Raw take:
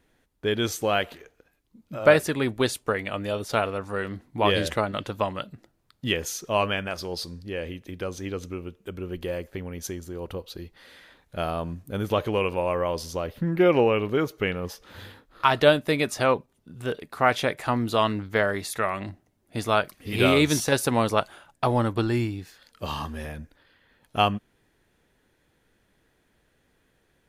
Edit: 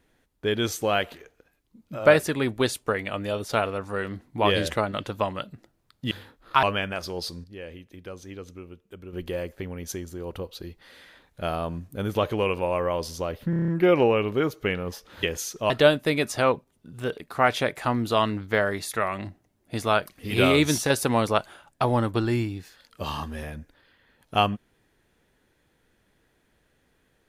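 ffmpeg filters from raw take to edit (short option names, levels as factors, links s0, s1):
-filter_complex "[0:a]asplit=13[s0][s1][s2][s3][s4][s5][s6][s7][s8][s9][s10][s11][s12];[s0]atrim=end=6.112[s13];[s1]atrim=start=14.998:end=15.522[s14];[s2]atrim=start=6.578:end=7.392[s15];[s3]atrim=start=7.388:end=9.082,asetpts=PTS-STARTPTS,volume=0.422[s16];[s4]atrim=start=9.078:end=13.482[s17];[s5]atrim=start=13.448:end=13.482[s18];[s6]atrim=start=13.448:end=13.482[s19];[s7]atrim=start=13.448:end=13.482[s20];[s8]atrim=start=13.448:end=13.482[s21];[s9]atrim=start=13.448:end=13.482[s22];[s10]atrim=start=13.448:end=15.002[s23];[s11]atrim=start=6.108:end=6.582[s24];[s12]atrim=start=15.518[s25];[s13][s14]acrossfade=d=0.004:c1=hsin:c2=hsin[s26];[s26][s15]acrossfade=d=0.004:c1=hsin:c2=hsin[s27];[s27][s16]acrossfade=d=0.004:c1=hsin:c2=hsin[s28];[s28][s17]acrossfade=d=0.004:c1=hsin:c2=hsin[s29];[s29][s18]acrossfade=d=0.004:c1=hsin:c2=hsin[s30];[s30][s19]acrossfade=d=0.004:c1=hsin:c2=hsin[s31];[s31][s20]acrossfade=d=0.004:c1=hsin:c2=hsin[s32];[s32][s21]acrossfade=d=0.004:c1=hsin:c2=hsin[s33];[s33][s22]acrossfade=d=0.004:c1=hsin:c2=hsin[s34];[s34][s23]acrossfade=d=0.004:c1=hsin:c2=hsin[s35];[s35][s24]acrossfade=d=0.004:c1=hsin:c2=hsin[s36];[s36][s25]acrossfade=d=0.004:c1=hsin:c2=hsin"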